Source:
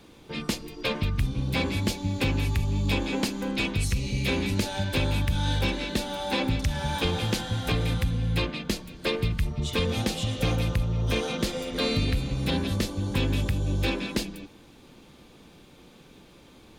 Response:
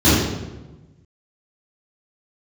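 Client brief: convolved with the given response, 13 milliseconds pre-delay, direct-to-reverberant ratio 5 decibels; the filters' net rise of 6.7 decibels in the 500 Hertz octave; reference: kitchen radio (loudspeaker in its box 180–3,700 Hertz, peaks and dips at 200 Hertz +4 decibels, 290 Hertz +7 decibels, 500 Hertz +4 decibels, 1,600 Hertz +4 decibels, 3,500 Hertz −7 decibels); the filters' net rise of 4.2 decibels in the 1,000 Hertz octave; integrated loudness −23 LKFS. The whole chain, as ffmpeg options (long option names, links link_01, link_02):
-filter_complex "[0:a]equalizer=frequency=500:width_type=o:gain=3.5,equalizer=frequency=1000:width_type=o:gain=3.5,asplit=2[link_01][link_02];[1:a]atrim=start_sample=2205,adelay=13[link_03];[link_02][link_03]afir=irnorm=-1:irlink=0,volume=-29.5dB[link_04];[link_01][link_04]amix=inputs=2:normalize=0,highpass=180,equalizer=frequency=200:width_type=q:width=4:gain=4,equalizer=frequency=290:width_type=q:width=4:gain=7,equalizer=frequency=500:width_type=q:width=4:gain=4,equalizer=frequency=1600:width_type=q:width=4:gain=4,equalizer=frequency=3500:width_type=q:width=4:gain=-7,lowpass=frequency=3700:width=0.5412,lowpass=frequency=3700:width=1.3066,volume=-2.5dB"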